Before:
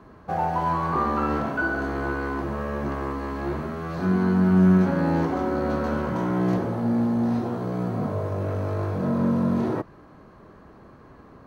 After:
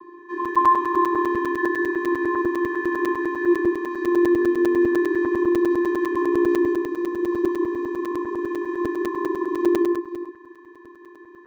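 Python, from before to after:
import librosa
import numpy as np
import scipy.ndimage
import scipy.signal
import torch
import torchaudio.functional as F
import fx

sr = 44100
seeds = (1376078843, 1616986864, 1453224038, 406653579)

p1 = fx.octave_divider(x, sr, octaves=1, level_db=2.0)
p2 = fx.peak_eq(p1, sr, hz=1400.0, db=9.0, octaves=1.4)
p3 = p2 + 0.31 * np.pad(p2, (int(5.0 * sr / 1000.0), 0))[:len(p2)]
p4 = fx.rider(p3, sr, range_db=10, speed_s=2.0)
p5 = p3 + (p4 * librosa.db_to_amplitude(1.0))
p6 = fx.vocoder(p5, sr, bands=16, carrier='square', carrier_hz=349.0)
p7 = p6 + fx.echo_multitap(p6, sr, ms=(161, 168, 176, 477), db=(-6.0, -19.0, -7.0, -13.0), dry=0)
p8 = fx.buffer_crackle(p7, sr, first_s=0.45, period_s=0.1, block=256, kind='zero')
y = p8 * librosa.db_to_amplitude(-6.0)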